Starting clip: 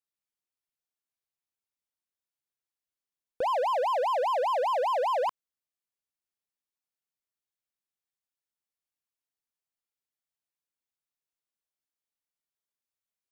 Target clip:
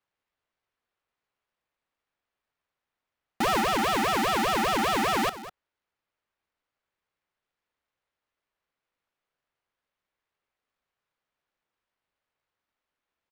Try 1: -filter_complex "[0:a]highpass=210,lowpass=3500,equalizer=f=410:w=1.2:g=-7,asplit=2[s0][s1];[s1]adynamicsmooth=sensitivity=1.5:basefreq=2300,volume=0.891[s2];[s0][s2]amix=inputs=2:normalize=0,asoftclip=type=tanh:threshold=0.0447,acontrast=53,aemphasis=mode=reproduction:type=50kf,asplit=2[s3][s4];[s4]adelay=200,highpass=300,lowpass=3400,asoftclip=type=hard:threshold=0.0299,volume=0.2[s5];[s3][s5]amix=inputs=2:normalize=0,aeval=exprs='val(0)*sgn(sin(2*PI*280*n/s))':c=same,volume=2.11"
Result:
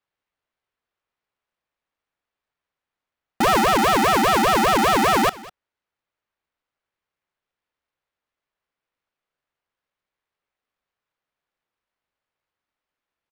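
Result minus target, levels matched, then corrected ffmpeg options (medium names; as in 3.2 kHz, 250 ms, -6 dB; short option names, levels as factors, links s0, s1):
saturation: distortion -5 dB
-filter_complex "[0:a]highpass=210,lowpass=3500,equalizer=f=410:w=1.2:g=-7,asplit=2[s0][s1];[s1]adynamicsmooth=sensitivity=1.5:basefreq=2300,volume=0.891[s2];[s0][s2]amix=inputs=2:normalize=0,asoftclip=type=tanh:threshold=0.0168,acontrast=53,aemphasis=mode=reproduction:type=50kf,asplit=2[s3][s4];[s4]adelay=200,highpass=300,lowpass=3400,asoftclip=type=hard:threshold=0.0299,volume=0.2[s5];[s3][s5]amix=inputs=2:normalize=0,aeval=exprs='val(0)*sgn(sin(2*PI*280*n/s))':c=same,volume=2.11"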